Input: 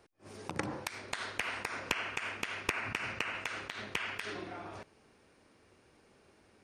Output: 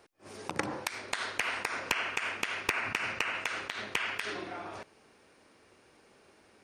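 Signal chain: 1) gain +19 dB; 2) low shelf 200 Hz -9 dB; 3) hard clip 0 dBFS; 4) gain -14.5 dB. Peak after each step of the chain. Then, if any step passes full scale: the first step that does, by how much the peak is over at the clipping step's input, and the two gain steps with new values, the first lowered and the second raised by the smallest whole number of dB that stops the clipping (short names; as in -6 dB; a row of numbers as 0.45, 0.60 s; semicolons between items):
+5.0, +5.0, 0.0, -14.5 dBFS; step 1, 5.0 dB; step 1 +14 dB, step 4 -9.5 dB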